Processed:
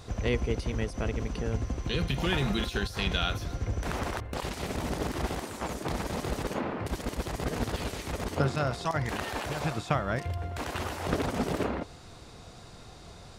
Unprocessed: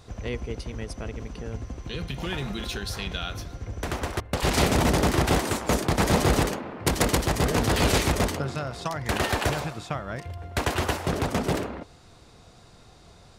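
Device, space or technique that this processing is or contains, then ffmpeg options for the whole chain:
de-esser from a sidechain: -filter_complex "[0:a]asplit=2[link_01][link_02];[link_02]highpass=frequency=6800:width=0.5412,highpass=frequency=6800:width=1.3066,apad=whole_len=590355[link_03];[link_01][link_03]sidechaincompress=threshold=-51dB:ratio=12:attack=1.4:release=28,volume=3.5dB"

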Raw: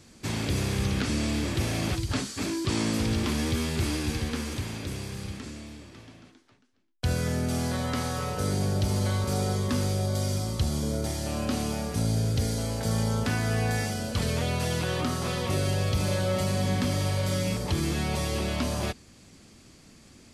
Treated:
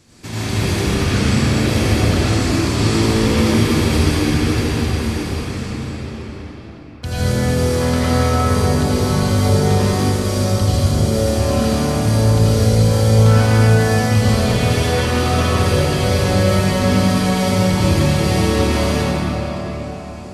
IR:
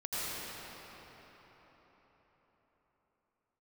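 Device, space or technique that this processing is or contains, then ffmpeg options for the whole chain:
cathedral: -filter_complex "[1:a]atrim=start_sample=2205[link_01];[0:a][link_01]afir=irnorm=-1:irlink=0,volume=6dB"

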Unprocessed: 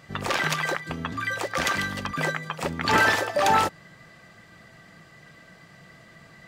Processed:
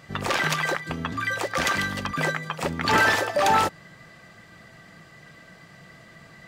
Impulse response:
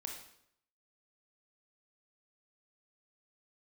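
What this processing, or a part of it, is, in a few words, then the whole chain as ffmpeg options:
parallel distortion: -filter_complex "[0:a]asplit=2[link_01][link_02];[link_02]asoftclip=type=hard:threshold=-22dB,volume=-7dB[link_03];[link_01][link_03]amix=inputs=2:normalize=0,volume=-1.5dB"

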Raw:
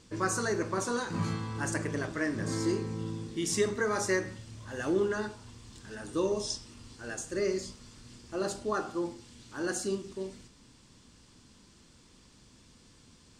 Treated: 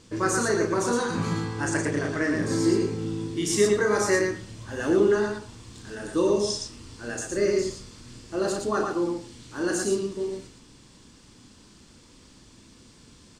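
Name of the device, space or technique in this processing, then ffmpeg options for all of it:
slapback doubling: -filter_complex "[0:a]asettb=1/sr,asplit=3[link_01][link_02][link_03];[link_01]atrim=end=1.554[link_04];[link_02]atrim=start=1.55:end=2.35,asetpts=PTS-STARTPTS,afade=type=in:duration=0.004:curve=qsin,afade=type=out:start_time=0.796:duration=0.004:curve=qsin,lowpass=frequency=10000:width=0.5412,lowpass=frequency=10000:width=1.3066[link_05];[link_03]atrim=start=2.346[link_06];[link_04][link_05]acrossfade=duration=0.004:curve1=hsin:curve2=qsin[link_07];[link_07][link_06]acrossfade=duration=0.004:curve1=qsin:curve2=hsin,equalizer=frequency=330:width=1.4:gain=2.5,asplit=3[link_08][link_09][link_10];[link_09]adelay=34,volume=-5.5dB[link_11];[link_10]adelay=115,volume=-4dB[link_12];[link_08][link_11][link_12]amix=inputs=3:normalize=0,volume=3.5dB"

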